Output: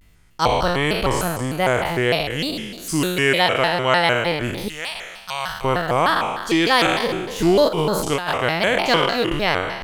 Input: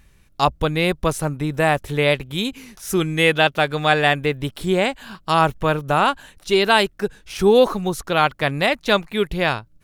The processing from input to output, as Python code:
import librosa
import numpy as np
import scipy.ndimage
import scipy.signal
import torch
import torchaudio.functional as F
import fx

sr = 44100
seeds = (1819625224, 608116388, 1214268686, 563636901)

y = fx.spec_trails(x, sr, decay_s=1.35)
y = fx.tone_stack(y, sr, knobs='10-0-10', at=(4.69, 5.65))
y = fx.over_compress(y, sr, threshold_db=-18.0, ratio=-0.5, at=(7.68, 8.31), fade=0.02)
y = fx.vibrato_shape(y, sr, shape='square', rate_hz=3.3, depth_cents=250.0)
y = y * 10.0 ** (-3.0 / 20.0)